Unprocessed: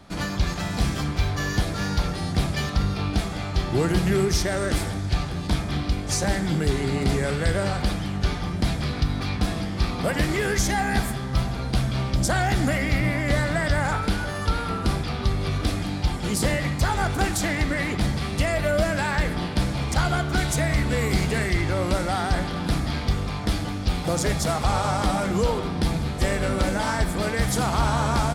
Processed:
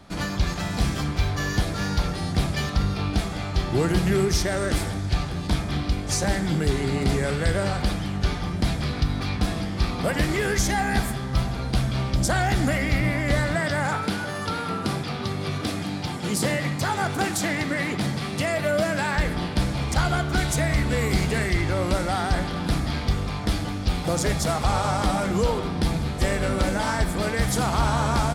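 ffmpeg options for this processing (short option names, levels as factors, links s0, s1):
-filter_complex "[0:a]asettb=1/sr,asplit=3[s0][s1][s2];[s0]atrim=end=13.554[s3];[s1]atrim=start=13.55:end=19.16,asetpts=PTS-STARTPTS,afade=t=in:d=0.004:c=qsin,afade=t=out:st=5.606:d=0.004:c=qsin,highpass=f=110:w=0.5412,highpass=f=110:w=1.3066[s4];[s2]atrim=start=19.156[s5];[s3][s4]acrossfade=d=0.004:c1=hsin:c2=qsin[s6];[s6][s5]acrossfade=d=0.004:c1=qsin:c2=hsin"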